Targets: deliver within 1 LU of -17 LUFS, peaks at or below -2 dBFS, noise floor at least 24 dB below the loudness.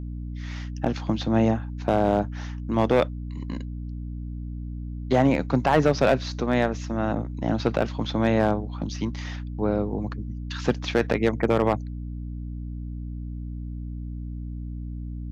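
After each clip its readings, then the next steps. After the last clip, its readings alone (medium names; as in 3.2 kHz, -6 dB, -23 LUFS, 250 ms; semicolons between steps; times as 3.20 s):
clipped samples 0.3%; clipping level -11.5 dBFS; hum 60 Hz; highest harmonic 300 Hz; hum level -31 dBFS; loudness -26.5 LUFS; peak level -11.5 dBFS; loudness target -17.0 LUFS
-> clip repair -11.5 dBFS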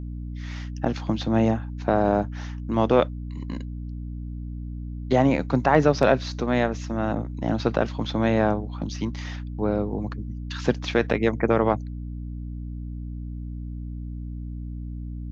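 clipped samples 0.0%; hum 60 Hz; highest harmonic 300 Hz; hum level -31 dBFS
-> de-hum 60 Hz, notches 5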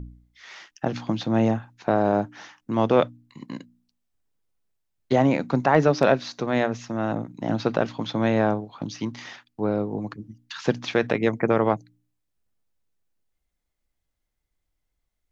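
hum not found; loudness -24.5 LUFS; peak level -5.0 dBFS; loudness target -17.0 LUFS
-> trim +7.5 dB; peak limiter -2 dBFS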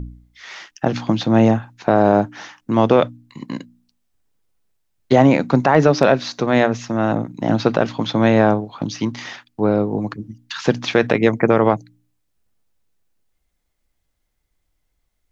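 loudness -17.5 LUFS; peak level -2.0 dBFS; noise floor -71 dBFS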